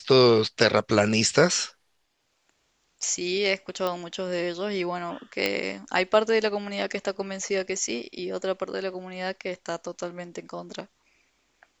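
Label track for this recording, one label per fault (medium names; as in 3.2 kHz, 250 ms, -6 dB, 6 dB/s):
3.870000	3.870000	pop -15 dBFS
5.460000	5.460000	pop -10 dBFS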